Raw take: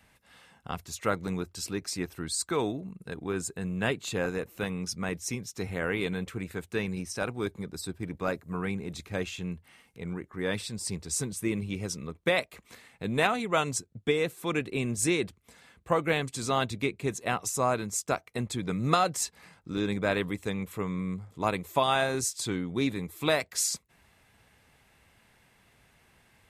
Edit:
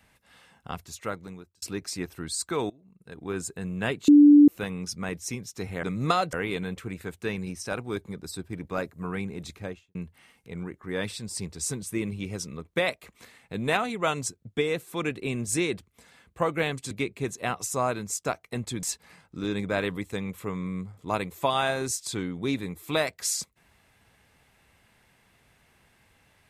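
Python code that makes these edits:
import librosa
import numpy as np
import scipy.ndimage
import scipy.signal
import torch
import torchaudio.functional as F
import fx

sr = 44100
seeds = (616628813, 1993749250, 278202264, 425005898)

y = fx.studio_fade_out(x, sr, start_s=9.0, length_s=0.45)
y = fx.edit(y, sr, fx.fade_out_span(start_s=0.72, length_s=0.9),
    fx.fade_in_from(start_s=2.7, length_s=0.61, curve='qua', floor_db=-22.0),
    fx.bleep(start_s=4.08, length_s=0.4, hz=292.0, db=-10.0),
    fx.cut(start_s=16.41, length_s=0.33),
    fx.move(start_s=18.66, length_s=0.5, to_s=5.83), tone=tone)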